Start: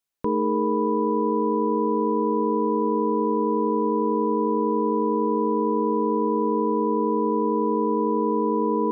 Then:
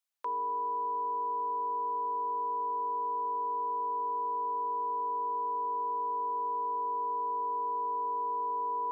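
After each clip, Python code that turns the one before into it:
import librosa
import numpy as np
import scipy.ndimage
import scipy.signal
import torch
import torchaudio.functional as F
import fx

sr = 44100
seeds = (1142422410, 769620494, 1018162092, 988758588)

y = scipy.signal.sosfilt(scipy.signal.butter(4, 690.0, 'highpass', fs=sr, output='sos'), x)
y = y * 10.0 ** (-3.5 / 20.0)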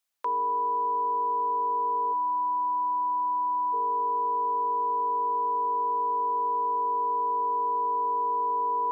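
y = fx.spec_box(x, sr, start_s=2.13, length_s=1.6, low_hz=360.0, high_hz=840.0, gain_db=-24)
y = y * 10.0 ** (6.0 / 20.0)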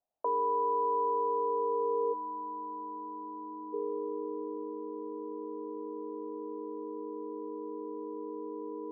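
y = scipy.signal.sosfilt(scipy.signal.butter(2, 1000.0, 'lowpass', fs=sr, output='sos'), x)
y = fx.filter_sweep_lowpass(y, sr, from_hz=690.0, to_hz=290.0, start_s=1.02, end_s=4.78, q=3.9)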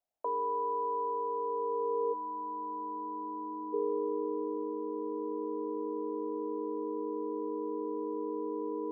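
y = fx.rider(x, sr, range_db=4, speed_s=2.0)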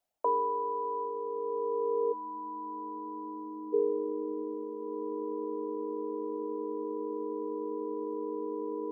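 y = fx.dereverb_blind(x, sr, rt60_s=1.6)
y = y * 10.0 ** (6.0 / 20.0)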